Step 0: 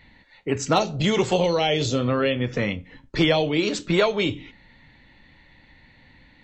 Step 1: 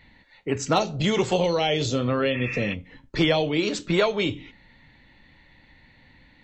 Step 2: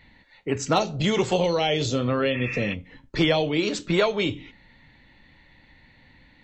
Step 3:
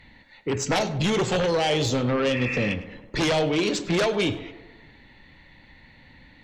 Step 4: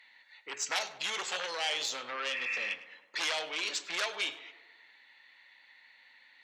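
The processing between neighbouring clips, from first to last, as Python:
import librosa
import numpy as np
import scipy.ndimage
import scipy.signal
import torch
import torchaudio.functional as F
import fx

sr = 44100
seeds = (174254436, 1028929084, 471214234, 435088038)

y1 = fx.spec_repair(x, sr, seeds[0], start_s=2.36, length_s=0.35, low_hz=860.0, high_hz=2700.0, source='before')
y1 = y1 * librosa.db_to_amplitude(-1.5)
y2 = y1
y3 = fx.fold_sine(y2, sr, drive_db=8, ceiling_db=-9.5)
y3 = fx.echo_tape(y3, sr, ms=101, feedback_pct=66, wet_db=-10.0, lp_hz=2000.0, drive_db=13.0, wow_cents=34)
y3 = y3 * librosa.db_to_amplitude(-9.0)
y4 = scipy.signal.sosfilt(scipy.signal.butter(2, 1200.0, 'highpass', fs=sr, output='sos'), y3)
y4 = y4 * librosa.db_to_amplitude(-4.0)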